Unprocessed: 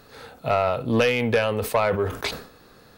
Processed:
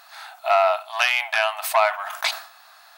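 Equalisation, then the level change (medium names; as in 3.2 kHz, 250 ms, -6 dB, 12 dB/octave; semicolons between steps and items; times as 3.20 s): brick-wall FIR high-pass 620 Hz; +5.5 dB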